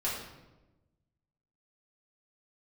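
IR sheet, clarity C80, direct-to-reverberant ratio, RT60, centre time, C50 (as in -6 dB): 5.0 dB, -7.5 dB, 1.1 s, 53 ms, 2.0 dB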